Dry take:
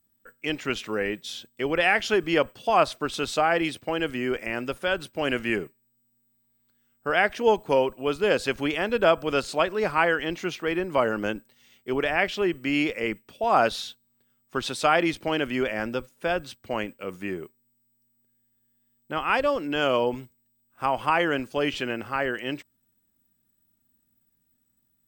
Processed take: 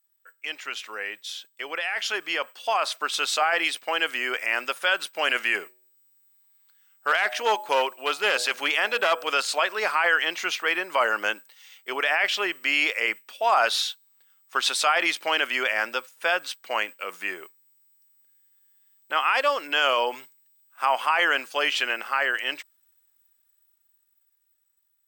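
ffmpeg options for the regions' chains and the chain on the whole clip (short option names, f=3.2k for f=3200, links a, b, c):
-filter_complex "[0:a]asettb=1/sr,asplit=3[a][b][c];[a]atrim=end=5.634[d];[b]atrim=start=5.63:end=9.29,asetpts=PTS-STARTPTS,afade=t=in:d=0.004:c=qsin,afade=t=out:st=3.656:d=0.004:c=qsin,bandreject=f=122.8:t=h:w=4,bandreject=f=245.6:t=h:w=4,bandreject=f=368.4:t=h:w=4,bandreject=f=491.2:t=h:w=4,bandreject=f=614:t=h:w=4,bandreject=f=736.8:t=h:w=4,bandreject=f=859.6:t=h:w=4,aeval=exprs='clip(val(0),-1,0.106)':c=same[e];[c]atrim=start=9.286[f];[d][e]acrossfade=d=0.004:c1=hsin:c2=qsin[g];[g][f]acrossfade=d=0.004:c1=qsin:c2=hsin,highpass=970,alimiter=limit=-19.5dB:level=0:latency=1:release=16,dynaudnorm=f=490:g=11:m=8.5dB"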